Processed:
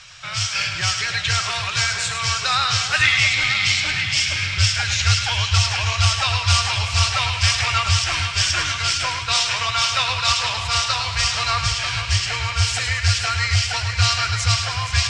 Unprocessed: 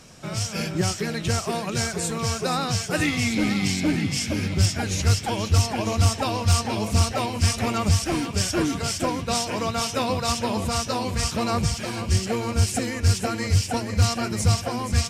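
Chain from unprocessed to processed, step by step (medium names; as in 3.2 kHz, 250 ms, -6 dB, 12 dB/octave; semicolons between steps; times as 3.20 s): FFT filter 120 Hz 0 dB, 230 Hz -28 dB, 1.3 kHz +8 dB, 3.4 kHz +13 dB, 7.7 kHz +2 dB, 12 kHz -18 dB; on a send: two-band feedback delay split 890 Hz, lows 303 ms, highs 105 ms, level -7.5 dB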